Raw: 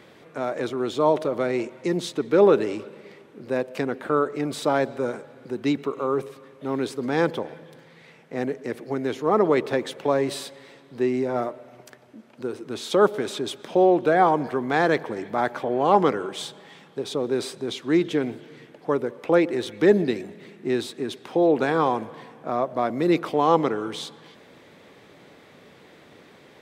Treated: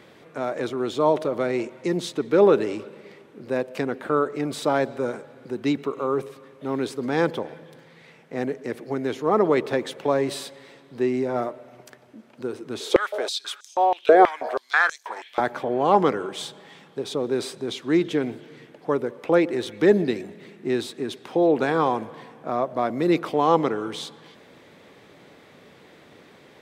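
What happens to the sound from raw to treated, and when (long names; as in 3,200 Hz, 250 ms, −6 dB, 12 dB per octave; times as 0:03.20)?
0:12.80–0:15.40: high-pass on a step sequencer 6.2 Hz 420–6,400 Hz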